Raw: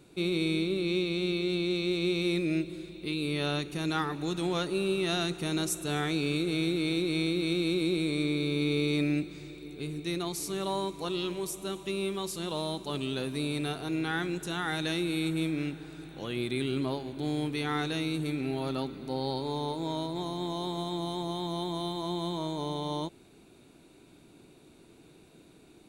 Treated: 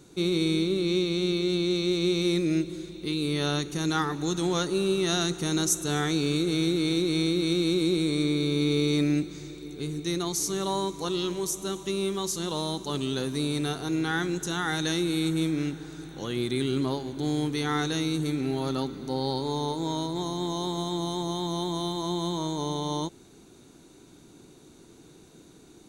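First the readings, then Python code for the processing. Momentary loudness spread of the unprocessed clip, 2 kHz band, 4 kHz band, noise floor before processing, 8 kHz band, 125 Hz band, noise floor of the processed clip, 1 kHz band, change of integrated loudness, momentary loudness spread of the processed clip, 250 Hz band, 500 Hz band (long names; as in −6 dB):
6 LU, +1.0 dB, +4.0 dB, −57 dBFS, +9.0 dB, +4.0 dB, −53 dBFS, +3.0 dB, +3.5 dB, 6 LU, +4.0 dB, +3.5 dB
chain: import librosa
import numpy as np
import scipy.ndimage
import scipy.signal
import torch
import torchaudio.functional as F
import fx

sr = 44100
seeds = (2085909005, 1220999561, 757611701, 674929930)

y = fx.graphic_eq_31(x, sr, hz=(630, 2500, 6300), db=(-5, -8, 11))
y = y * 10.0 ** (4.0 / 20.0)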